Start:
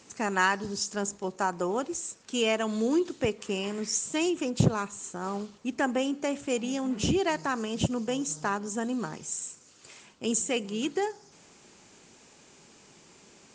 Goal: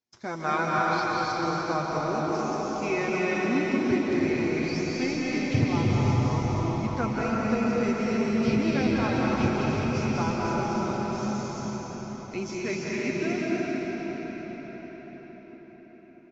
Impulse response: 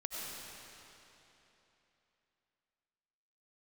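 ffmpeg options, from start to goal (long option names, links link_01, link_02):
-filter_complex "[0:a]bandreject=frequency=7100:width=29,agate=range=-33dB:threshold=-47dB:ratio=16:detection=peak,acrossover=split=4900[link_01][link_02];[link_02]acompressor=threshold=-49dB:ratio=4:attack=1:release=60[link_03];[link_01][link_03]amix=inputs=2:normalize=0,aecho=1:1:6.8:0.57,asetrate=36603,aresample=44100,asplit=4[link_04][link_05][link_06][link_07];[link_05]adelay=415,afreqshift=-61,volume=-16dB[link_08];[link_06]adelay=830,afreqshift=-122,volume=-25.4dB[link_09];[link_07]adelay=1245,afreqshift=-183,volume=-34.7dB[link_10];[link_04][link_08][link_09][link_10]amix=inputs=4:normalize=0[link_11];[1:a]atrim=start_sample=2205,asetrate=22491,aresample=44100[link_12];[link_11][link_12]afir=irnorm=-1:irlink=0,volume=-4dB"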